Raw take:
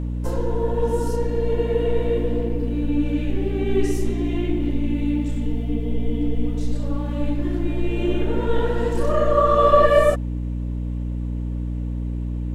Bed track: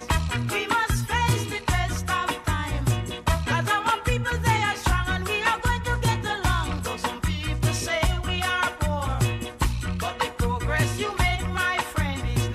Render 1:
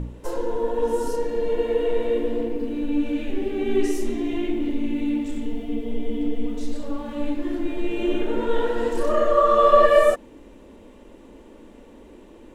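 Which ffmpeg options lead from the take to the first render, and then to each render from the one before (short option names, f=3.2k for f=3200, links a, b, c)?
-af "bandreject=f=60:t=h:w=4,bandreject=f=120:t=h:w=4,bandreject=f=180:t=h:w=4,bandreject=f=240:t=h:w=4,bandreject=f=300:t=h:w=4"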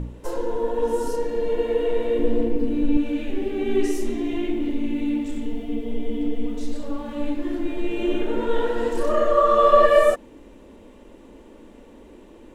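-filter_complex "[0:a]asettb=1/sr,asplit=3[a][b][c];[a]atrim=end=2.194[d];[b]atrim=start=2.19:end=2.97,asetpts=PTS-STARTPTS,afade=t=in:d=0.004:c=qsin,afade=t=out:st=0.776:d=0.004:c=qsin,lowshelf=f=270:g=8.5[e];[c]atrim=start=2.966[f];[d][e]acrossfade=d=0.004:c1=hsin:c2=qsin[g];[g][f]acrossfade=d=0.004:c1=qsin:c2=hsin"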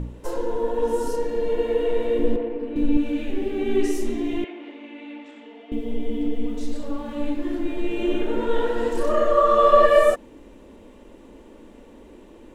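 -filter_complex "[0:a]asettb=1/sr,asplit=3[a][b][c];[a]atrim=end=2.364[d];[b]atrim=start=2.36:end=2.76,asetpts=PTS-STARTPTS,afade=t=in:d=0.004:c=qsin,afade=t=out:st=0.396:d=0.004:c=qsin,acrossover=split=350 3200:gain=0.158 1 0.126[e][f][g];[e][f][g]amix=inputs=3:normalize=0[h];[c]atrim=start=2.756[i];[d][h]acrossfade=d=0.004:c1=hsin:c2=qsin[j];[j][i]acrossfade=d=0.004:c1=qsin:c2=hsin,asettb=1/sr,asplit=3[k][l][m];[k]atrim=end=4.444[n];[l]atrim=start=4.44:end=5.72,asetpts=PTS-STARTPTS,afade=t=in:d=0.004:c=qsin,afade=t=out:st=1.276:d=0.004:c=qsin,highpass=670,lowpass=2.8k[o];[m]atrim=start=5.716[p];[n][o]acrossfade=d=0.004:c1=hsin:c2=qsin[q];[q][p]acrossfade=d=0.004:c1=qsin:c2=hsin"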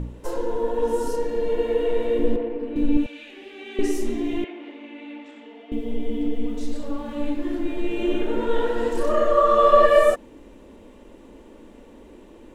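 -filter_complex "[0:a]asettb=1/sr,asplit=3[a][b][c];[a]atrim=end=3.064[d];[b]atrim=start=3.06:end=3.79,asetpts=PTS-STARTPTS,afade=t=in:d=0.004:c=qsin,afade=t=out:st=0.726:d=0.004:c=qsin,bandpass=f=3.3k:t=q:w=0.67[e];[c]atrim=start=3.786[f];[d][e]acrossfade=d=0.004:c1=hsin:c2=qsin[g];[g][f]acrossfade=d=0.004:c1=qsin:c2=hsin"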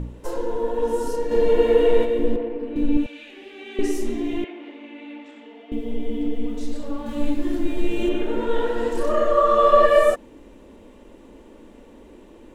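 -filter_complex "[0:a]asplit=3[a][b][c];[a]afade=t=out:st=1.3:d=0.02[d];[b]acontrast=65,afade=t=in:st=1.3:d=0.02,afade=t=out:st=2.04:d=0.02[e];[c]afade=t=in:st=2.04:d=0.02[f];[d][e][f]amix=inputs=3:normalize=0,asettb=1/sr,asplit=3[g][h][i];[g]atrim=end=7.064[j];[h]atrim=start=7.06:end=8.09,asetpts=PTS-STARTPTS,afade=t=in:d=0.004:c=qsin,afade=t=out:st=1.026:d=0.004:c=qsin,bass=f=250:g=6,treble=f=4k:g=8[k];[i]atrim=start=8.086[l];[j][k]acrossfade=d=0.004:c1=hsin:c2=qsin[m];[m][l]acrossfade=d=0.004:c1=qsin:c2=hsin"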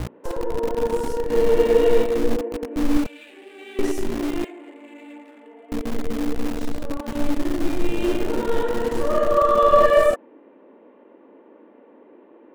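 -filter_complex "[0:a]acrossover=split=240|2200[a][b][c];[a]acrusher=bits=4:mix=0:aa=0.000001[d];[c]aeval=exprs='sgn(val(0))*max(abs(val(0))-0.00224,0)':c=same[e];[d][b][e]amix=inputs=3:normalize=0"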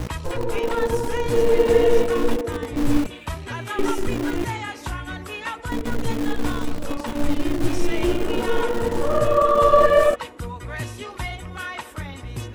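-filter_complex "[1:a]volume=-7.5dB[a];[0:a][a]amix=inputs=2:normalize=0"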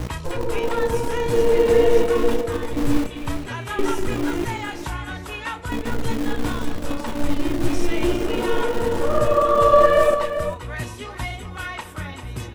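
-filter_complex "[0:a]asplit=2[a][b];[b]adelay=32,volume=-12dB[c];[a][c]amix=inputs=2:normalize=0,aecho=1:1:396:0.316"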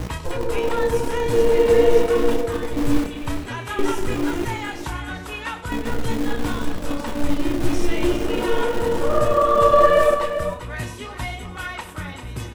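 -filter_complex "[0:a]asplit=2[a][b];[b]adelay=28,volume=-11dB[c];[a][c]amix=inputs=2:normalize=0,aecho=1:1:98:0.188"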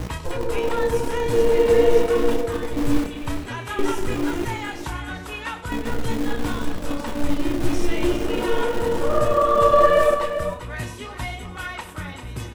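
-af "volume=-1dB"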